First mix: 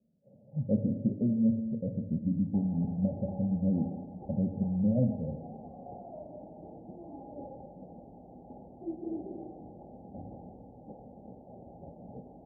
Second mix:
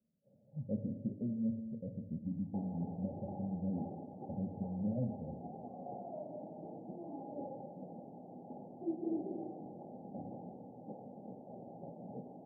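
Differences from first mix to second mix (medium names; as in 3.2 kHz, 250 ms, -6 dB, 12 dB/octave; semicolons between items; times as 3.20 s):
speech -9.5 dB; background: add high-pass 130 Hz 24 dB/octave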